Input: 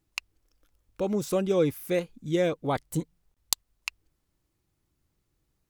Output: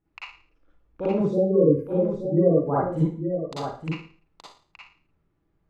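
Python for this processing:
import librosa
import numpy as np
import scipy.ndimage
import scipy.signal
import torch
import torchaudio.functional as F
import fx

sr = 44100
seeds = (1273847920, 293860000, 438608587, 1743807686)

y = fx.spec_gate(x, sr, threshold_db=-15, keep='strong', at=(1.22, 2.88), fade=0.02)
y = scipy.signal.sosfilt(scipy.signal.butter(2, 1700.0, 'lowpass', fs=sr, output='sos'), y)
y = y + 10.0 ** (-7.5 / 20.0) * np.pad(y, (int(873 * sr / 1000.0), 0))[:len(y)]
y = fx.rev_schroeder(y, sr, rt60_s=0.42, comb_ms=38, drr_db=-8.5)
y = F.gain(torch.from_numpy(y), -3.0).numpy()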